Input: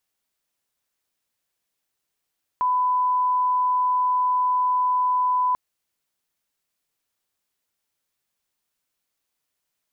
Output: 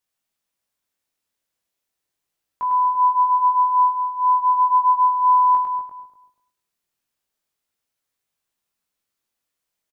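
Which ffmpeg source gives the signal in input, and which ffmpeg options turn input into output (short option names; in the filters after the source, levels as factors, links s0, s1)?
-f lavfi -i "sine=f=1000:d=2.94:r=44100,volume=0.06dB"
-filter_complex "[0:a]asplit=2[s0][s1];[s1]aecho=0:1:102|204|306|408:0.596|0.208|0.073|0.0255[s2];[s0][s2]amix=inputs=2:normalize=0,flanger=delay=18:depth=6.6:speed=0.37,asplit=2[s3][s4];[s4]adelay=242,lowpass=f=850:p=1,volume=0.562,asplit=2[s5][s6];[s6]adelay=242,lowpass=f=850:p=1,volume=0.26,asplit=2[s7][s8];[s8]adelay=242,lowpass=f=850:p=1,volume=0.26[s9];[s5][s7][s9]amix=inputs=3:normalize=0[s10];[s3][s10]amix=inputs=2:normalize=0"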